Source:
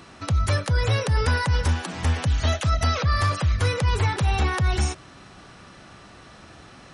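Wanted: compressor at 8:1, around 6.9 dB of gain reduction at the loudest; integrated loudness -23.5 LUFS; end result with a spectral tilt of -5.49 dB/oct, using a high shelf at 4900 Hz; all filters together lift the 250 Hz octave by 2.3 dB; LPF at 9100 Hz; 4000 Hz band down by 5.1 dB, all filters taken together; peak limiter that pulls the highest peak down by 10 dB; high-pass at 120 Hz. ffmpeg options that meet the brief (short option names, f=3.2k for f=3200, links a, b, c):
-af "highpass=120,lowpass=9.1k,equalizer=f=250:t=o:g=4,equalizer=f=4k:t=o:g=-4,highshelf=f=4.9k:g=-5,acompressor=threshold=-28dB:ratio=8,volume=13.5dB,alimiter=limit=-14dB:level=0:latency=1"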